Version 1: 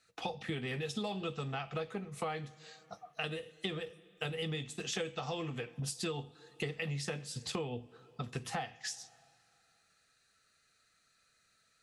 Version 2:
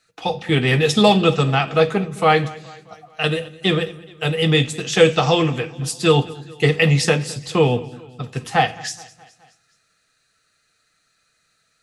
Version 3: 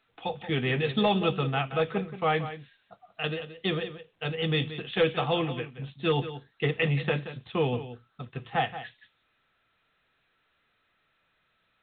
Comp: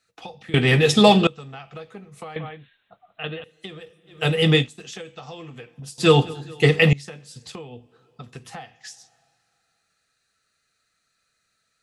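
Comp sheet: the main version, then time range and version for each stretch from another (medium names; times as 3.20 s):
1
0.54–1.27 s: from 2
2.36–3.44 s: from 3
4.11–4.62 s: from 2, crossfade 0.16 s
5.98–6.93 s: from 2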